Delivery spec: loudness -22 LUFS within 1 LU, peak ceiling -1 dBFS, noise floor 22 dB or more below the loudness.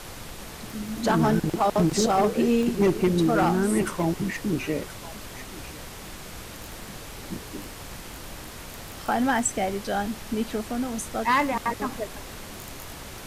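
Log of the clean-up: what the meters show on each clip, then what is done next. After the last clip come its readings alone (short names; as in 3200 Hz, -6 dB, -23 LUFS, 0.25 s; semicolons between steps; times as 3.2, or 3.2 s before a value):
dropouts 4; longest dropout 1.1 ms; noise floor -40 dBFS; noise floor target -47 dBFS; loudness -25.0 LUFS; peak -12.5 dBFS; loudness target -22.0 LUFS
-> interpolate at 0.88/2.63/4/9.39, 1.1 ms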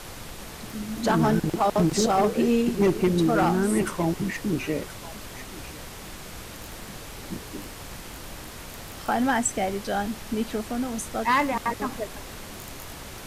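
dropouts 0; noise floor -40 dBFS; noise floor target -47 dBFS
-> noise print and reduce 7 dB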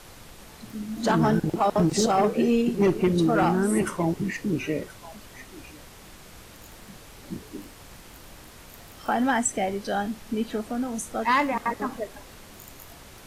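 noise floor -47 dBFS; loudness -25.0 LUFS; peak -13.0 dBFS; loudness target -22.0 LUFS
-> gain +3 dB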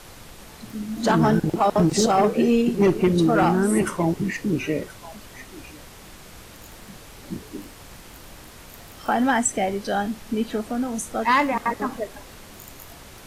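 loudness -22.0 LUFS; peak -10.0 dBFS; noise floor -44 dBFS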